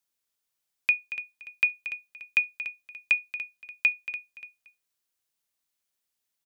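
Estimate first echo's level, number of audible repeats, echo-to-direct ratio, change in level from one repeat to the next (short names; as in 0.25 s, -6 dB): -12.5 dB, 2, -12.0 dB, -9.0 dB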